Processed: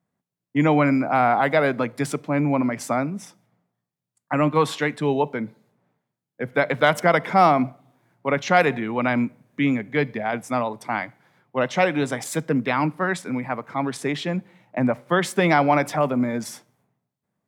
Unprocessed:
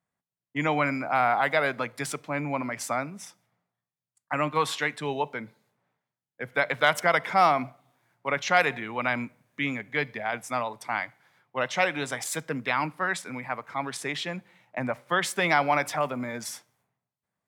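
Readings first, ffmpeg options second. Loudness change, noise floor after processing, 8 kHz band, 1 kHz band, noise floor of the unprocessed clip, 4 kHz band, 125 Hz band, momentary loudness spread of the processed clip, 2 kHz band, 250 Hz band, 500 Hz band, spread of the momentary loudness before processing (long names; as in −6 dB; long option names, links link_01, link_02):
+5.0 dB, −85 dBFS, 0.0 dB, +4.0 dB, below −85 dBFS, +0.5 dB, +10.0 dB, 10 LU, +1.5 dB, +11.5 dB, +7.0 dB, 13 LU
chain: -af "equalizer=frequency=230:width_type=o:width=3:gain=12"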